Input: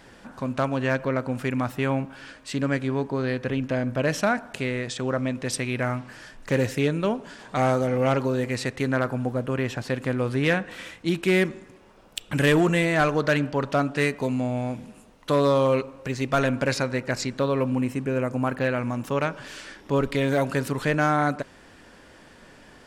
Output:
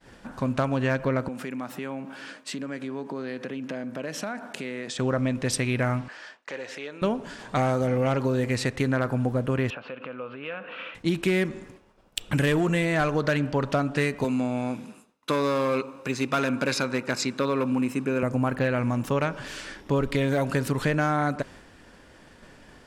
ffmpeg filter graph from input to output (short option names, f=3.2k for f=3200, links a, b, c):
-filter_complex "[0:a]asettb=1/sr,asplit=3[a][b][c];[a]atrim=end=1.284[d];[b]atrim=start=1.28:end=4.99,asetpts=PTS-STARTPTS,afade=t=in:d=0.004:c=qsin,afade=t=out:st=3.706:d=0.004:c=qsin,acompressor=threshold=-32dB:ratio=5:attack=3.2:release=140:knee=1:detection=peak,highpass=f=180:w=0.5412,highpass=f=180:w=1.3066[e];[c]atrim=start=4.986[f];[d][e]acrossfade=d=0.004:c1=hsin:c2=qsin[g];[g][f]acrossfade=d=0.004:c1=qsin:c2=hsin,asettb=1/sr,asplit=3[h][i][j];[h]atrim=end=6.084[k];[i]atrim=start=6.08:end=7.02,asetpts=PTS-STARTPTS,afade=t=in:d=0.004:c=qsin,afade=t=out:st=0.936:d=0.004:c=qsin,acompressor=threshold=-31dB:ratio=3:attack=3.2:release=140:knee=1:detection=peak,highpass=560,lowpass=5k[l];[j]atrim=start=7.016[m];[k][l]acrossfade=d=0.004:c1=hsin:c2=qsin[n];[n][m]acrossfade=d=0.004:c1=qsin:c2=hsin,asettb=1/sr,asplit=3[o][p][q];[o]atrim=end=9.704[r];[p]atrim=start=9.7:end=10.95,asetpts=PTS-STARTPTS,afade=t=in:d=0.004:c=qsin,afade=t=out:st=1.246:d=0.004:c=qsin,acompressor=threshold=-31dB:ratio=10:attack=3.2:release=140:knee=1:detection=peak,highpass=350,equalizer=f=350:t=q:w=4:g=-8,equalizer=f=520:t=q:w=4:g=3,equalizer=f=780:t=q:w=4:g=-4,equalizer=f=1.3k:t=q:w=4:g=7,equalizer=f=1.9k:t=q:w=4:g=-9,equalizer=f=2.7k:t=q:w=4:g=8,lowpass=f=2.9k:w=0.5412,lowpass=f=2.9k:w=1.3066[s];[q]atrim=start=10.946[t];[r][s]acrossfade=d=0.004:c1=hsin:c2=qsin[u];[u][t]acrossfade=d=0.004:c1=qsin:c2=hsin,asettb=1/sr,asplit=3[v][w][x];[v]atrim=end=14.244[y];[w]atrim=start=14.24:end=18.23,asetpts=PTS-STARTPTS,afade=t=in:d=0.004:c=qsin,afade=t=out:st=3.986:d=0.004:c=qsin,asoftclip=type=hard:threshold=-18dB,highpass=240,aecho=1:1:0.8:0.34,atrim=end_sample=175959[z];[x]atrim=start=18.226[aa];[y][z]acrossfade=d=0.004:c1=hsin:c2=qsin[ab];[ab][aa]acrossfade=d=0.004:c1=qsin:c2=hsin,agate=range=-33dB:threshold=-45dB:ratio=3:detection=peak,lowshelf=f=150:g=4.5,acompressor=threshold=-22dB:ratio=6,volume=2dB"